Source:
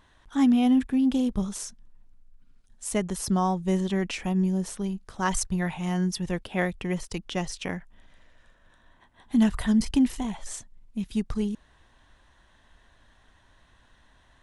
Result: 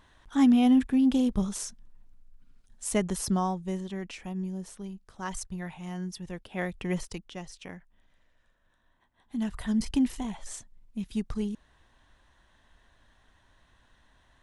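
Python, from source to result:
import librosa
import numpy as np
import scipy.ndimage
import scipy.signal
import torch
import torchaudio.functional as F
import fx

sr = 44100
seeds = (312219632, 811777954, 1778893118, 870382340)

y = fx.gain(x, sr, db=fx.line((3.18, 0.0), (3.84, -9.5), (6.39, -9.5), (7.0, 0.0), (7.3, -11.0), (9.37, -11.0), (9.86, -3.5)))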